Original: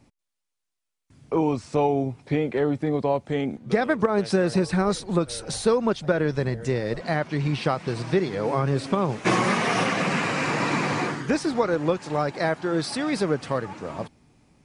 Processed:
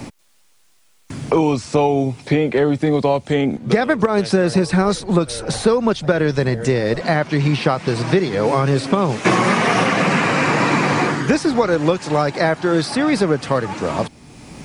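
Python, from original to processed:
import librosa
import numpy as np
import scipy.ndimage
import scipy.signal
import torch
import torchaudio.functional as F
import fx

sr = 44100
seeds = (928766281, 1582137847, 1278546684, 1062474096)

y = fx.band_squash(x, sr, depth_pct=70)
y = y * 10.0 ** (6.5 / 20.0)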